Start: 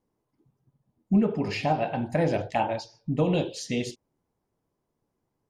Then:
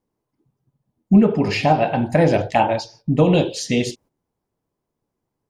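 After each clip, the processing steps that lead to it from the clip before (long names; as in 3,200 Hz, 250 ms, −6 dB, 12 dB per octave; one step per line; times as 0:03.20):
noise gate −56 dBFS, range −9 dB
level +9 dB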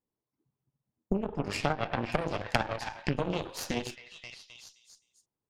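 echo through a band-pass that steps 261 ms, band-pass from 1,400 Hz, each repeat 0.7 octaves, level −2 dB
downward compressor 8 to 1, threshold −21 dBFS, peak gain reduction 13.5 dB
harmonic generator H 3 −11 dB, 4 −12 dB, 5 −44 dB, 6 −24 dB, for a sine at −9 dBFS
level +1.5 dB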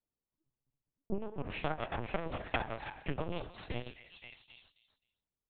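linear-prediction vocoder at 8 kHz pitch kept
level −5.5 dB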